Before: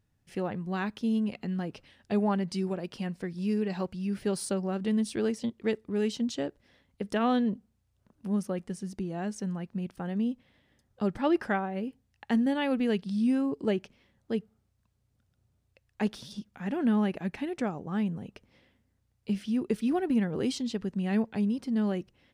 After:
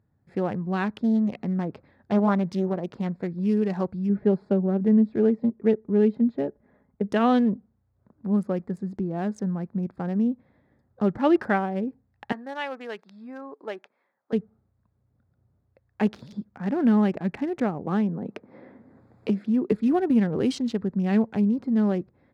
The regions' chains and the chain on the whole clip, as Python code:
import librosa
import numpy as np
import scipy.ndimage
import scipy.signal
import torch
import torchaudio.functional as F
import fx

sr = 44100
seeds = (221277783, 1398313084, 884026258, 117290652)

y = fx.chain(x, sr, fx.high_shelf(hz=5700.0, db=-6.0),
    fx.doppler_dist(depth_ms=0.4), at=(1.0, 3.4))
y = fx.chain(y, sr, fx.lowpass(hz=1800.0, slope=12),
    fx.dynamic_eq(hz=1200.0, q=1.6, threshold_db=-53.0, ratio=4.0, max_db=-6),
    fx.comb(ms=4.8, depth=0.44), at=(4.09, 7.12))
y = fx.chain(y, sr, fx.highpass(hz=860.0, slope=12),
    fx.high_shelf(hz=3900.0, db=-9.5), at=(12.32, 14.33))
y = fx.chain(y, sr, fx.highpass(hz=270.0, slope=12),
    fx.low_shelf(hz=390.0, db=7.0),
    fx.band_squash(depth_pct=70), at=(17.86, 19.72))
y = fx.wiener(y, sr, points=15)
y = scipy.signal.sosfilt(scipy.signal.butter(2, 74.0, 'highpass', fs=sr, output='sos'), y)
y = fx.high_shelf(y, sr, hz=4200.0, db=-7.0)
y = y * librosa.db_to_amplitude(6.0)